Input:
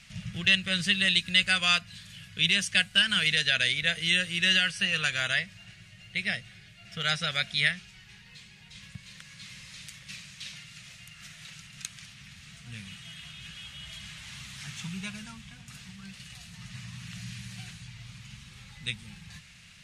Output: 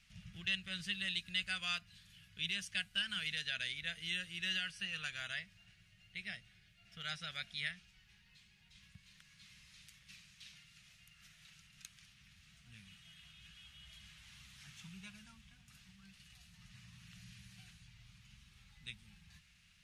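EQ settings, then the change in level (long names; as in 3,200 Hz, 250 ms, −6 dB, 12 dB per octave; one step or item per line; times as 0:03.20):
octave-band graphic EQ 125/250/500/1,000/2,000/4,000/8,000 Hz −8/−5/−11/−5/−5/−4/−8 dB
−8.0 dB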